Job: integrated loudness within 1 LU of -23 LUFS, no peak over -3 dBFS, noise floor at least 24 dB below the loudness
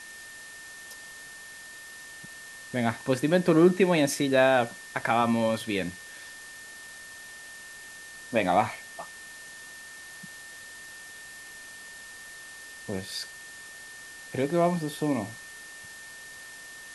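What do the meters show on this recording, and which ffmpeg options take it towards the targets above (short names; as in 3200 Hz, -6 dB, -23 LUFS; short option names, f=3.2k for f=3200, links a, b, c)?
steady tone 1800 Hz; tone level -44 dBFS; noise floor -45 dBFS; noise floor target -50 dBFS; loudness -26.0 LUFS; peak -8.5 dBFS; loudness target -23.0 LUFS
-> -af "bandreject=f=1.8k:w=30"
-af "afftdn=nr=6:nf=-45"
-af "volume=3dB"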